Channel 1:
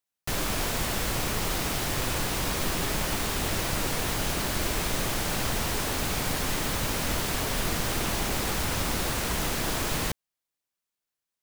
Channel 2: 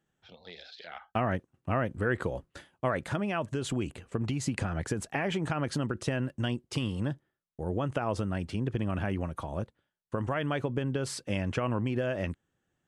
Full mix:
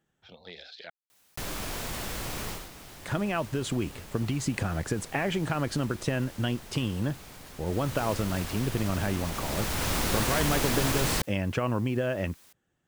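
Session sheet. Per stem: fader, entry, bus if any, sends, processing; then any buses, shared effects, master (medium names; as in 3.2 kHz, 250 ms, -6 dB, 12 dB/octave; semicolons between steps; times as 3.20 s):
2.50 s -8 dB -> 2.71 s -20 dB -> 7.60 s -20 dB -> 7.99 s -10.5 dB -> 9.20 s -10.5 dB -> 9.93 s -1 dB, 1.10 s, no send, level flattener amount 50%
+2.0 dB, 0.00 s, muted 0.90–3.02 s, no send, none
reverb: none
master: none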